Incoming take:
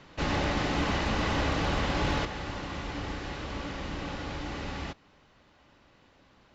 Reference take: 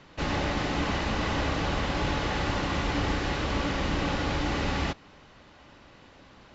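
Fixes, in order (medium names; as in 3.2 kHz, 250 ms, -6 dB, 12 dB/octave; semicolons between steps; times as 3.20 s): clip repair -19.5 dBFS; trim 0 dB, from 2.25 s +8 dB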